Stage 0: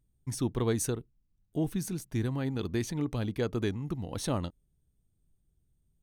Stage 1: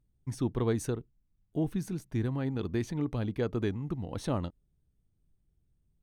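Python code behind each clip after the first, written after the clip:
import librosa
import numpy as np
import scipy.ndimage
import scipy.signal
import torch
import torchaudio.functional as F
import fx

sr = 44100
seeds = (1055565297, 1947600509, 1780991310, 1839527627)

y = fx.high_shelf(x, sr, hz=3900.0, db=-11.0)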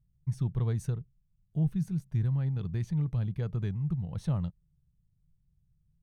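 y = fx.low_shelf_res(x, sr, hz=210.0, db=9.0, q=3.0)
y = F.gain(torch.from_numpy(y), -8.0).numpy()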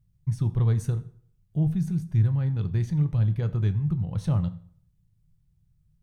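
y = fx.rev_fdn(x, sr, rt60_s=0.57, lf_ratio=1.0, hf_ratio=0.8, size_ms=56.0, drr_db=9.0)
y = F.gain(torch.from_numpy(y), 4.5).numpy()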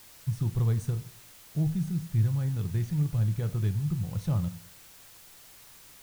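y = fx.dmg_noise_colour(x, sr, seeds[0], colour='white', level_db=-49.0)
y = F.gain(torch.from_numpy(y), -3.5).numpy()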